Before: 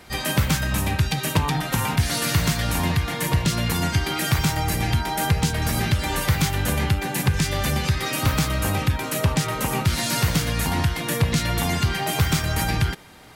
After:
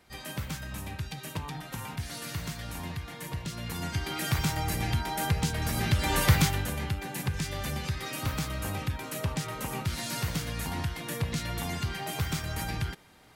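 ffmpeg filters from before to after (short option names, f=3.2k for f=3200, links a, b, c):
-af "volume=-0.5dB,afade=t=in:st=3.55:d=0.81:silence=0.398107,afade=t=in:st=5.76:d=0.55:silence=0.473151,afade=t=out:st=6.31:d=0.38:silence=0.316228"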